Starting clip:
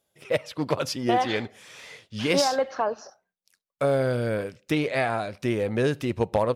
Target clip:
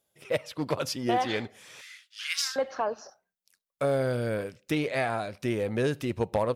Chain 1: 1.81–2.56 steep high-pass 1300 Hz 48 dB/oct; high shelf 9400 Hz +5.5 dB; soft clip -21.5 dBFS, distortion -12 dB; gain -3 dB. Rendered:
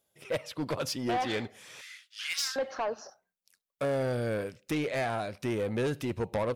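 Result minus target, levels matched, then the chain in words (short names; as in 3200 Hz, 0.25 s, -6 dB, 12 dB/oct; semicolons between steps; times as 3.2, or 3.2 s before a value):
soft clip: distortion +17 dB
1.81–2.56 steep high-pass 1300 Hz 48 dB/oct; high shelf 9400 Hz +5.5 dB; soft clip -9.5 dBFS, distortion -29 dB; gain -3 dB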